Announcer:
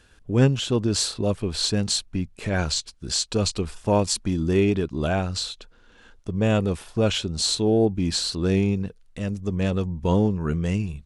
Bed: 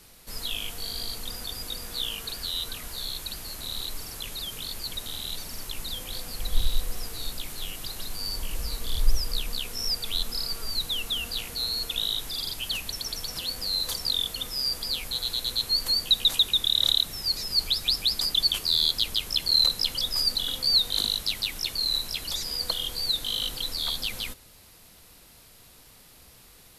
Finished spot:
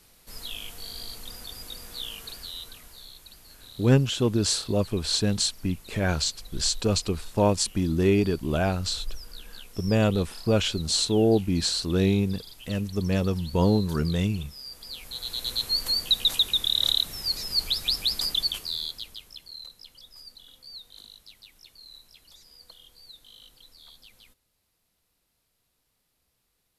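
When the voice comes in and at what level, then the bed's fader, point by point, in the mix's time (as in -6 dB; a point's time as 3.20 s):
3.50 s, -1.0 dB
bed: 2.30 s -5 dB
3.15 s -13.5 dB
14.68 s -13.5 dB
15.50 s -1 dB
18.30 s -1 dB
19.60 s -22 dB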